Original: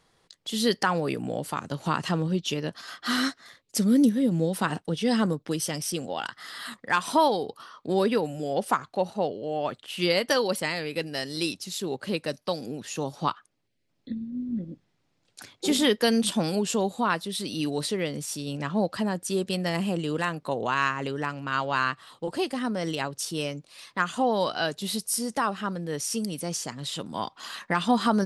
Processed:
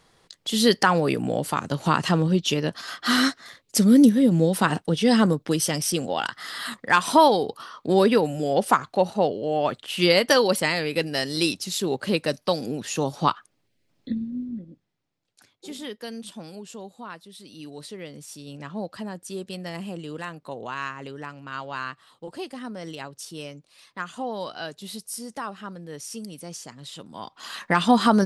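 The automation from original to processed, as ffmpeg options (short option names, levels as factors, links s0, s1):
-af "volume=15.8,afade=t=out:st=14.17:d=0.44:silence=0.266073,afade=t=out:st=14.61:d=0.94:silence=0.421697,afade=t=in:st=17.43:d=1.17:silence=0.446684,afade=t=in:st=27.21:d=0.53:silence=0.266073"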